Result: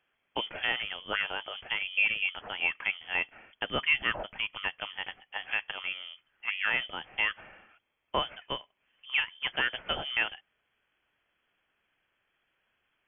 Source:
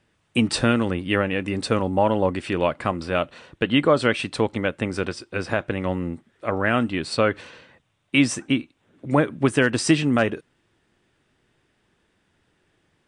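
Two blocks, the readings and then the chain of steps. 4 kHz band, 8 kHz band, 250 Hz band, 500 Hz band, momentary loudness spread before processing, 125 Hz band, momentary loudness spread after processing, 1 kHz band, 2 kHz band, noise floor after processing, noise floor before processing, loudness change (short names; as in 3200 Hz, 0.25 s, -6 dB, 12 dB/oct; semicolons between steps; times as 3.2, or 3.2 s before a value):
-1.5 dB, under -40 dB, -27.0 dB, -19.5 dB, 9 LU, -25.5 dB, 12 LU, -10.5 dB, -2.5 dB, -78 dBFS, -68 dBFS, -8.0 dB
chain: resonant low shelf 520 Hz -9 dB, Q 1.5; inverted band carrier 3300 Hz; gain -7 dB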